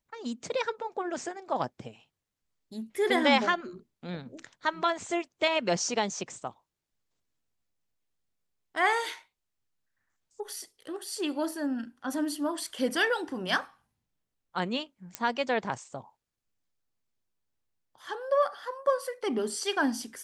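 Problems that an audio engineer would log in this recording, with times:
0:15.15: click −14 dBFS

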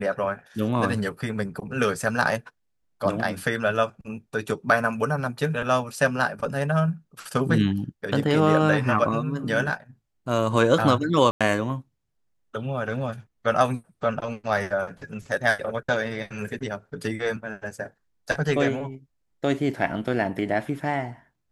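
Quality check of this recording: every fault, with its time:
0:11.31–0:11.41: drop-out 96 ms

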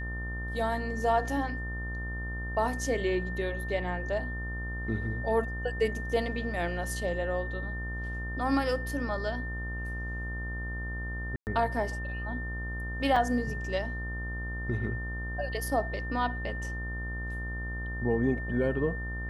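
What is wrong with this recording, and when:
mains buzz 60 Hz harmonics 24 −36 dBFS
whistle 1,800 Hz −38 dBFS
0:11.36–0:11.47: drop-out 109 ms
0:13.16: drop-out 3.6 ms

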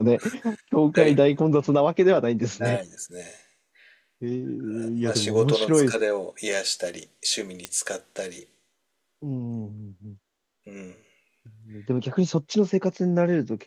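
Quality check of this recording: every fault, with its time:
0:07.65: click −13 dBFS

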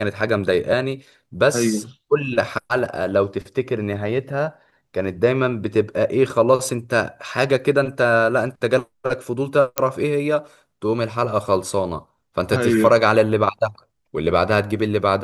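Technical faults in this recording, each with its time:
0:09.78: click −1 dBFS

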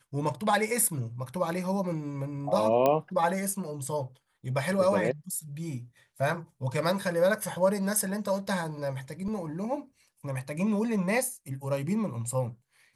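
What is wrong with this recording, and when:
0:02.86: click −12 dBFS
0:09.28: drop-out 2.4 ms

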